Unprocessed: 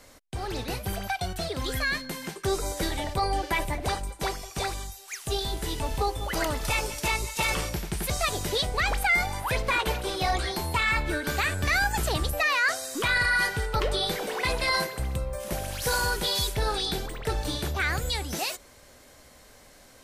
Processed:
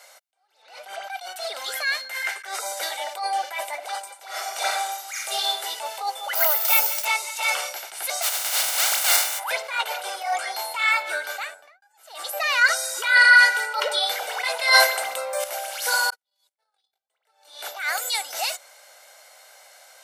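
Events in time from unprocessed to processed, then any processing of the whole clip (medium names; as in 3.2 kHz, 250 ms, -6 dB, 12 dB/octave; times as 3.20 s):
0.62–1.10 s: distance through air 76 m
2.10–2.59 s: peaking EQ 1.9 kHz +13.5 dB 0.86 oct
4.26–5.47 s: reverb throw, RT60 0.91 s, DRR -2 dB
6.35–7.05 s: careless resampling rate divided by 3×, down none, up zero stuff
8.21–9.38 s: spectral contrast reduction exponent 0.12
10.07–10.55 s: peaking EQ 3.9 kHz -12.5 dB 0.41 oct
11.12–11.82 s: studio fade out
12.61–13.99 s: comb 2.1 ms, depth 95%
14.59–15.44 s: gain +9 dB
16.10–17.10 s: gate -24 dBFS, range -59 dB
17.77–18.21 s: treble shelf 9.5 kHz -> 5.9 kHz +9.5 dB
whole clip: high-pass 610 Hz 24 dB/octave; comb 1.4 ms, depth 46%; attacks held to a fixed rise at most 110 dB/s; trim +4 dB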